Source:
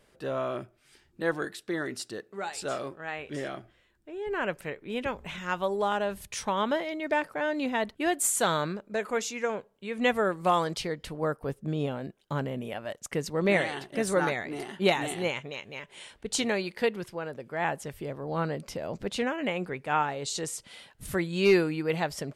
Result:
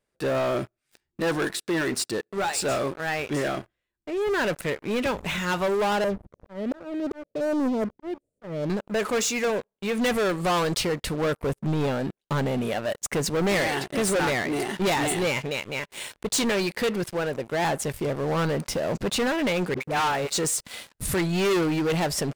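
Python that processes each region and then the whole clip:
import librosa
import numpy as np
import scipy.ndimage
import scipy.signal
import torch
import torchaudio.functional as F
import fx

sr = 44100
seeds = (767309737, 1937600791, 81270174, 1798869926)

y = fx.chain(x, sr, fx.ellip_lowpass(hz=590.0, order=4, stop_db=50),
    fx.auto_swell(attack_ms=418.0), at=(6.04, 8.7))
y = fx.chain(y, sr, fx.law_mismatch(coded='A'),
    fx.highpass(hz=89.0, slope=12),
    fx.dispersion(late='highs', ms=64.0, hz=450.0), at=(19.74, 20.34))
y = fx.peak_eq(y, sr, hz=8900.0, db=3.0, octaves=0.77)
y = fx.notch(y, sr, hz=3100.0, q=16.0)
y = fx.leveller(y, sr, passes=5)
y = y * 10.0 ** (-7.0 / 20.0)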